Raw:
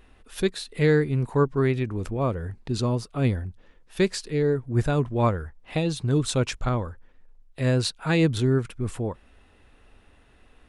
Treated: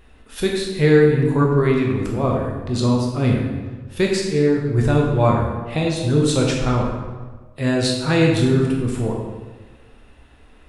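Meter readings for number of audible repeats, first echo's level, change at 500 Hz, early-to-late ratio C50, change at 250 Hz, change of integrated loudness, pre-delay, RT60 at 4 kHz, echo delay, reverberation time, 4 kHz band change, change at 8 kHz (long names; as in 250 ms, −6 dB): no echo audible, no echo audible, +6.5 dB, 1.5 dB, +7.5 dB, +6.0 dB, 13 ms, 0.95 s, no echo audible, 1.4 s, +6.0 dB, +5.5 dB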